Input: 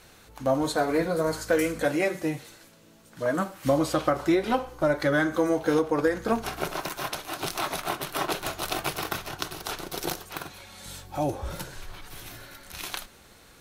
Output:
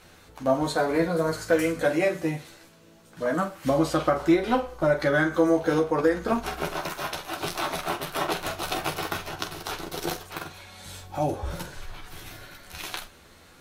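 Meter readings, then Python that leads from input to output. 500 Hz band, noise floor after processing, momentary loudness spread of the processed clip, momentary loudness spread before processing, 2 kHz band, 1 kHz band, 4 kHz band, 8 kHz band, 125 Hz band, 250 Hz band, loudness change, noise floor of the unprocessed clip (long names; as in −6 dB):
+1.5 dB, −53 dBFS, 17 LU, 16 LU, +1.5 dB, +1.5 dB, 0.0 dB, −1.5 dB, +2.0 dB, +1.5 dB, +1.5 dB, −54 dBFS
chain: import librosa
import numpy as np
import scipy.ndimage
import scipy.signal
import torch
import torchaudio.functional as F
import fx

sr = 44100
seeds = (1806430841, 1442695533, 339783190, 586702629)

y = fx.high_shelf(x, sr, hz=6000.0, db=-5.0)
y = fx.room_early_taps(y, sr, ms=(12, 46), db=(-5.0, -10.5))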